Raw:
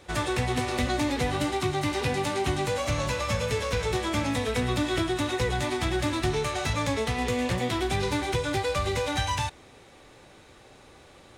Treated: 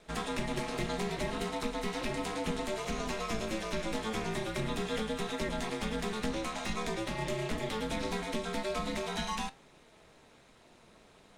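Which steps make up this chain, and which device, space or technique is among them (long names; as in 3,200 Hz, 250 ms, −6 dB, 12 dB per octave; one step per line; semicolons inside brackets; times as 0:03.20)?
alien voice (ring modulation 110 Hz; flanger 0.4 Hz, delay 6 ms, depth 4.1 ms, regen +81%)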